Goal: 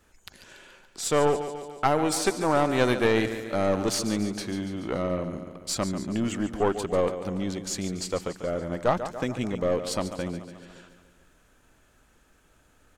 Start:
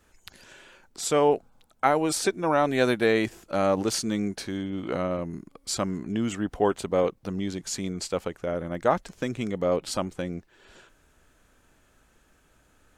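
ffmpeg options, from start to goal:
-filter_complex "[0:a]aecho=1:1:143|286|429|572|715|858|1001:0.266|0.157|0.0926|0.0546|0.0322|0.019|0.0112,aeval=exprs='0.501*(cos(1*acos(clip(val(0)/0.501,-1,1)))-cos(1*PI/2))+0.0794*(cos(4*acos(clip(val(0)/0.501,-1,1)))-cos(4*PI/2))':c=same,asplit=2[a][b];[b]volume=24dB,asoftclip=hard,volume=-24dB,volume=-11dB[c];[a][c]amix=inputs=2:normalize=0,volume=-2dB"

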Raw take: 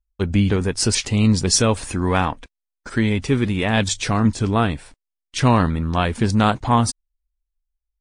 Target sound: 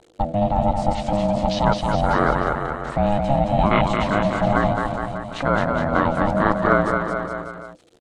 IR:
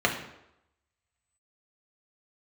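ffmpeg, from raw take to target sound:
-filter_complex "[0:a]aeval=exprs='val(0)+0.5*0.0282*sgn(val(0))':c=same,afwtdn=0.0891,acrossover=split=3300[a][b];[b]acompressor=threshold=-43dB:ratio=4:attack=1:release=60[c];[a][c]amix=inputs=2:normalize=0,lowshelf=f=470:g=7,asplit=2[d][e];[e]acompressor=threshold=-27dB:ratio=6,volume=-2dB[f];[d][f]amix=inputs=2:normalize=0,alimiter=limit=-7dB:level=0:latency=1:release=21,highpass=310,equalizer=f=920:t=q:w=4:g=4,equalizer=f=1.9k:t=q:w=4:g=3,equalizer=f=3.6k:t=q:w=4:g=7,equalizer=f=5.3k:t=q:w=4:g=-8,lowpass=f=8.4k:w=0.5412,lowpass=f=8.4k:w=1.3066,aecho=1:1:220|418|596.2|756.6|900.9:0.631|0.398|0.251|0.158|0.1,aeval=exprs='val(0)*sin(2*PI*410*n/s)':c=same,volume=4dB"

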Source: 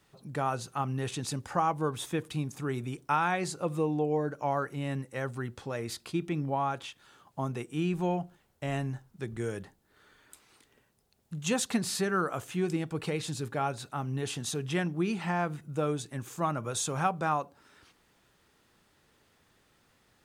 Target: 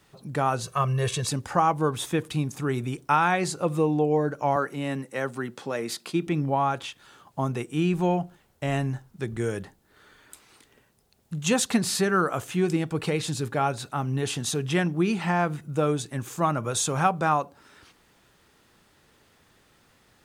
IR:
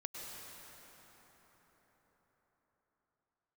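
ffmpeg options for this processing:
-filter_complex "[0:a]asettb=1/sr,asplit=3[a][b][c];[a]atrim=end=0.634[d];[b]atrim=start=0.63:end=1.29,asetpts=PTS-STARTPTS,afade=t=in:d=0.004:c=qsin,afade=t=out:st=0.656:d=0.004:c=qsin,aecho=1:1:1.8:0.87,atrim=end_sample=29106[e];[c]atrim=start=1.286[f];[d][e]acrossfade=d=0.004:c1=hsin:c2=qsin[g];[g][f]acrossfade=d=0.004:c1=qsin:c2=hsin,asettb=1/sr,asplit=3[h][i][j];[h]atrim=end=4.564[k];[i]atrim=start=4.56:end=6.27,asetpts=PTS-STARTPTS,afade=t=in:d=0.004:c=qsin,afade=t=out:st=1.706:d=0.004:c=qsin,highpass=f=160:w=0.5412,highpass=f=160:w=1.3066[l];[j]atrim=start=6.266[m];[k][l]acrossfade=d=0.004:c1=hsin:c2=qsin[n];[n][m]acrossfade=d=0.004:c1=qsin:c2=hsin,volume=6dB"

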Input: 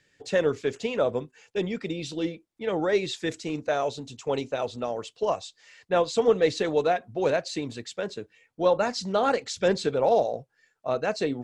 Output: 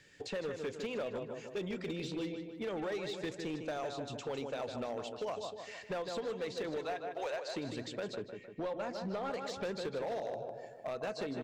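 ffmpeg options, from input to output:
-filter_complex "[0:a]asettb=1/sr,asplit=3[a][b][c];[a]atrim=end=6.854[d];[b]atrim=start=6.85:end=7.47,asetpts=PTS-STARTPTS,afade=t=in:d=0.004:c=qsin,afade=t=out:st=0.616:d=0.004:c=qsin,highpass=f=560:w=0.5412,highpass=f=560:w=1.3066[e];[c]atrim=start=7.466[f];[d][e]acrossfade=d=0.004:c1=hsin:c2=qsin[g];[g][f]acrossfade=d=0.004:c1=qsin:c2=hsin,acompressor=threshold=-46dB:ratio=2,asplit=2[h][i];[i]adelay=153,lowpass=f=3.3k:p=1,volume=-8dB,asplit=2[j][k];[k]adelay=153,lowpass=f=3.3k:p=1,volume=0.53,asplit=2[l][m];[m]adelay=153,lowpass=f=3.3k:p=1,volume=0.53,asplit=2[n][o];[o]adelay=153,lowpass=f=3.3k:p=1,volume=0.53,asplit=2[p][q];[q]adelay=153,lowpass=f=3.3k:p=1,volume=0.53,asplit=2[r][s];[s]adelay=153,lowpass=f=3.3k:p=1,volume=0.53[t];[h][j][l][n][p][r][t]amix=inputs=7:normalize=0,acrossover=split=1400|4200[u][v][w];[u]acompressor=threshold=-38dB:ratio=4[x];[v]acompressor=threshold=-49dB:ratio=4[y];[w]acompressor=threshold=-60dB:ratio=4[z];[x][y][z]amix=inputs=3:normalize=0,asoftclip=type=hard:threshold=-36.5dB,asettb=1/sr,asplit=3[aa][ab][ac];[aa]atrim=end=8.154[ad];[ab]atrim=start=8.15:end=9.34,asetpts=PTS-STARTPTS,afade=t=in:d=0.004:c=qsin,afade=t=out:st=1.186:d=0.004:c=qsin,highshelf=f=4k:g=-9.5[ae];[ac]atrim=start=9.336[af];[ad][ae]acrossfade=d=0.004:c1=hsin:c2=qsin[ag];[ag][af]acrossfade=d=0.004:c1=qsin:c2=hsin,volume=4dB"

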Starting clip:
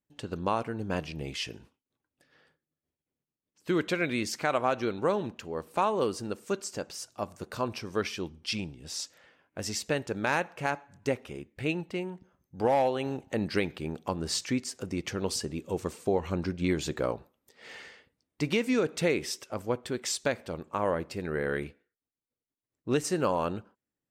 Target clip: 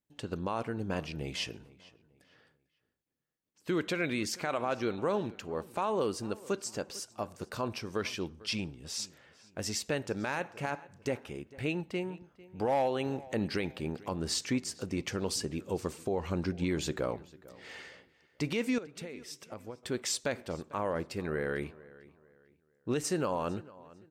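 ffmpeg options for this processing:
-filter_complex "[0:a]asettb=1/sr,asplit=3[a][b][c];[a]atrim=end=18.784[d];[b]atrim=start=18.78:end=19.83,asetpts=PTS-STARTPTS,afade=t=in:d=0.004:c=qsin,afade=t=out:st=1.046:d=0.004:c=qsin,acompressor=threshold=-39dB:ratio=12[e];[c]atrim=start=19.826[f];[d][e]acrossfade=d=0.004:c1=hsin:c2=qsin[g];[g][f]acrossfade=d=0.004:c1=qsin:c2=hsin,alimiter=limit=-20.5dB:level=0:latency=1:release=38,asplit=2[h][i];[i]adelay=448,lowpass=f=4.3k:p=1,volume=-20.5dB,asplit=2[j][k];[k]adelay=448,lowpass=f=4.3k:p=1,volume=0.34,asplit=2[l][m];[m]adelay=448,lowpass=f=4.3k:p=1,volume=0.34[n];[h][j][l][n]amix=inputs=4:normalize=0,volume=-1dB"

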